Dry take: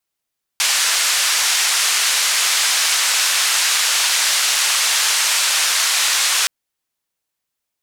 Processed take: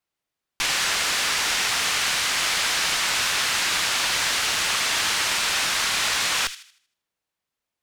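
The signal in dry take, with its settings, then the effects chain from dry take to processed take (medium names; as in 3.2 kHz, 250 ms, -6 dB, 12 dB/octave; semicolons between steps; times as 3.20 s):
noise band 1.2–7.9 kHz, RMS -17 dBFS 5.87 s
single-diode clipper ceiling -17.5 dBFS; treble shelf 4.9 kHz -11 dB; on a send: feedback echo behind a high-pass 78 ms, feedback 37%, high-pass 2.2 kHz, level -11 dB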